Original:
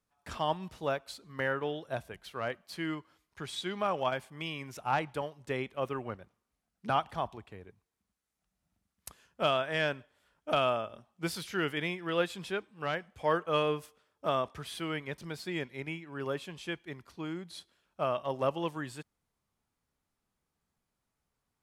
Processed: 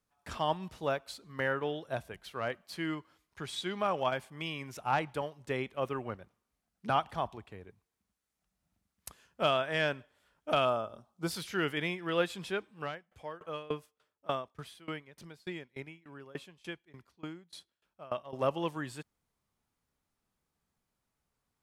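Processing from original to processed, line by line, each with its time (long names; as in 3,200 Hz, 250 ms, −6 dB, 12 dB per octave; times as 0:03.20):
0:10.65–0:11.31: flat-topped bell 2,300 Hz −8.5 dB 1.1 octaves
0:12.82–0:18.33: tremolo with a ramp in dB decaying 3.4 Hz, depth 23 dB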